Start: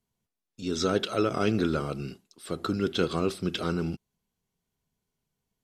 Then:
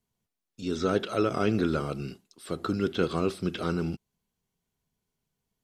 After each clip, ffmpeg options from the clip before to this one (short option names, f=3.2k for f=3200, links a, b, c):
-filter_complex "[0:a]acrossover=split=2700[a][b];[b]acompressor=threshold=-41dB:ratio=4:attack=1:release=60[c];[a][c]amix=inputs=2:normalize=0"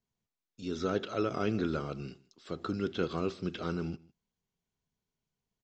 -af "aecho=1:1:155:0.0668,aresample=16000,aresample=44100,volume=-5.5dB"